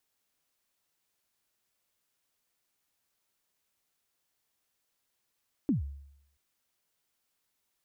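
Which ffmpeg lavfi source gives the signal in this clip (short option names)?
-f lavfi -i "aevalsrc='0.0841*pow(10,-3*t/0.76)*sin(2*PI*(320*0.13/log(70/320)*(exp(log(70/320)*min(t,0.13)/0.13)-1)+70*max(t-0.13,0)))':d=0.68:s=44100"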